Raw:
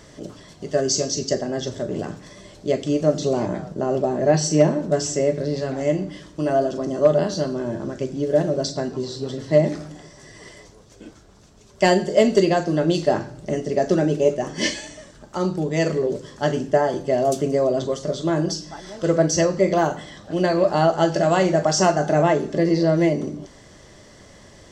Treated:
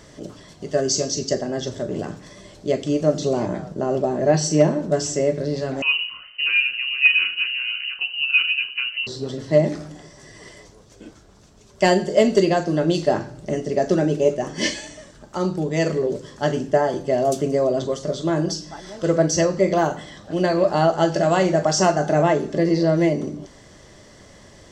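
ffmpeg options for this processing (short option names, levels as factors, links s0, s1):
-filter_complex "[0:a]asettb=1/sr,asplit=3[s0][s1][s2];[s0]atrim=end=5.824[s3];[s1]atrim=start=5.82:end=9.07,asetpts=PTS-STARTPTS,afade=t=in:d=0.004:c=qsin,afade=t=out:st=3.246:d=0.004:c=qsin,lowpass=f=2600:t=q:w=0.5098,lowpass=f=2600:t=q:w=0.6013,lowpass=f=2600:t=q:w=0.9,lowpass=f=2600:t=q:w=2.563,afreqshift=-3100[s4];[s2]atrim=start=9.066[s5];[s3][s4]acrossfade=d=0.004:c1=hsin:c2=qsin[s6];[s6][s5]acrossfade=d=0.004:c1=qsin:c2=hsin"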